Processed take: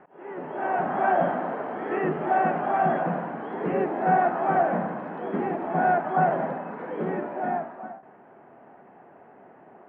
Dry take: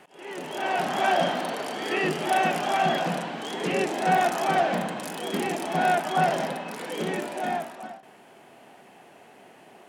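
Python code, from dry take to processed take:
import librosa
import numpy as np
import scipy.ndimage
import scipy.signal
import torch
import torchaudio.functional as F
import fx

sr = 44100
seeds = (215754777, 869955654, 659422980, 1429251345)

y = scipy.signal.sosfilt(scipy.signal.butter(4, 1600.0, 'lowpass', fs=sr, output='sos'), x)
y = y * 10.0 ** (1.0 / 20.0)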